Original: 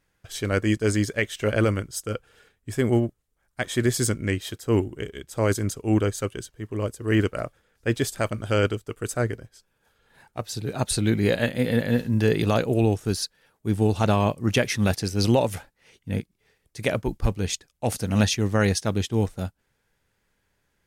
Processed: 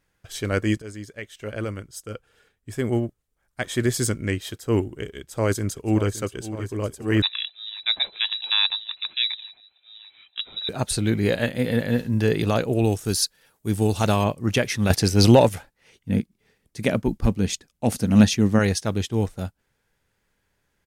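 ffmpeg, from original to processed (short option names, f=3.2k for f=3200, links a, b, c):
-filter_complex "[0:a]asplit=2[a][b];[b]afade=t=in:st=5.18:d=0.01,afade=t=out:st=6.12:d=0.01,aecho=0:1:570|1140|1710|2280|2850|3420|3990|4560|5130|5700|6270|6840:0.237137|0.177853|0.13339|0.100042|0.0750317|0.0562738|0.0422054|0.031654|0.0237405|0.0178054|0.013354|0.0100155[c];[a][c]amix=inputs=2:normalize=0,asettb=1/sr,asplit=3[d][e][f];[d]atrim=end=7.224[g];[e]atrim=start=7.22:end=10.69,asetpts=PTS-STARTPTS,afade=t=in:d=0.004:c=qsin,afade=t=out:st=3.466:d=0.004:c=qsin,lowpass=f=3.4k:t=q:w=0.5098,lowpass=f=3.4k:t=q:w=0.6013,lowpass=f=3.4k:t=q:w=0.9,lowpass=f=3.4k:t=q:w=2.563,afreqshift=-4000[h];[f]atrim=start=10.686[i];[g][h]acrossfade=d=0.004:c1=hsin:c2=qsin[j];[j][i]acrossfade=d=0.004:c1=qsin:c2=hsin,asettb=1/sr,asplit=3[k][l][m];[k]atrim=end=12.844[n];[l]atrim=start=12.84:end=14.24,asetpts=PTS-STARTPTS,afade=t=in:d=0.004:c=qsin,afade=t=out:st=1.396:d=0.004:c=qsin,highshelf=f=4.5k:g=10.5[o];[m]atrim=start=14.236[p];[n][o]acrossfade=d=0.004:c1=hsin:c2=qsin[q];[q][p]acrossfade=d=0.004:c1=qsin:c2=hsin,asettb=1/sr,asplit=3[r][s][t];[r]atrim=end=14.904[u];[s]atrim=start=14.9:end=15.49,asetpts=PTS-STARTPTS,afade=t=in:d=0.004:c=qsin,afade=t=out:st=0.586:d=0.004:c=qsin,acontrast=89[v];[t]atrim=start=15.486[w];[u][v]acrossfade=d=0.004:c1=hsin:c2=qsin[x];[x][w]acrossfade=d=0.004:c1=qsin:c2=hsin,asettb=1/sr,asplit=3[y][z][aa];[y]atrim=end=16.094[ab];[z]atrim=start=16.09:end=18.59,asetpts=PTS-STARTPTS,afade=t=in:d=0.004:c=qsin,afade=t=out:st=2.496:d=0.004:c=qsin,equalizer=f=220:w=1.5:g=9[ac];[aa]atrim=start=18.586[ad];[ab][ac]acrossfade=d=0.004:c1=hsin:c2=qsin[ae];[ae][ad]acrossfade=d=0.004:c1=qsin:c2=hsin,asplit=2[af][ag];[af]atrim=end=0.82,asetpts=PTS-STARTPTS,afade=t=out:st=0.816:d=0.004:c=hsin:silence=0.158489[ah];[ag]atrim=start=0.82,asetpts=PTS-STARTPTS,afade=t=in:d=2.9:silence=0.158489[ai];[ah][ai]concat=n=2:v=0:a=1"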